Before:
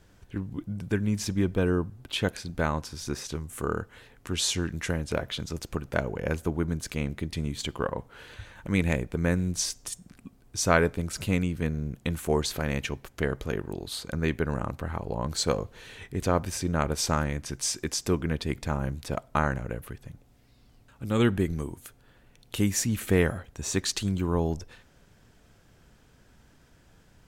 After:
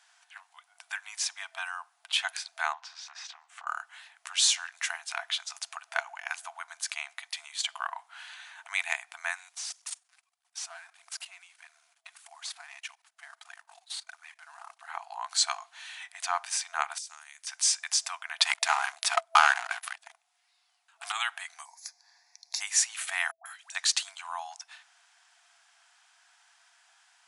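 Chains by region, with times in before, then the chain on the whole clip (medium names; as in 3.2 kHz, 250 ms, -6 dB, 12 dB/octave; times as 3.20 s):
2.73–3.67 s: compression 12:1, threshold -31 dBFS + distance through air 160 m + loudspeaker Doppler distortion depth 0.26 ms
9.49–14.88 s: CVSD coder 64 kbps + level held to a coarse grid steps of 19 dB + cancelling through-zero flanger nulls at 1.6 Hz, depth 6.7 ms
16.98–17.47 s: differentiator + compression 3:1, threshold -46 dBFS
18.40–21.12 s: high-pass 200 Hz + waveshaping leveller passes 3
21.65–22.61 s: resonant high shelf 4.1 kHz +7.5 dB, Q 3 + static phaser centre 2 kHz, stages 8
23.31–23.75 s: amplifier tone stack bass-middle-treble 10-0-10 + compressor with a negative ratio -45 dBFS + phase dispersion highs, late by 145 ms, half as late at 520 Hz
whole clip: FFT band-pass 660–11000 Hz; tilt shelf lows -4.5 dB, about 920 Hz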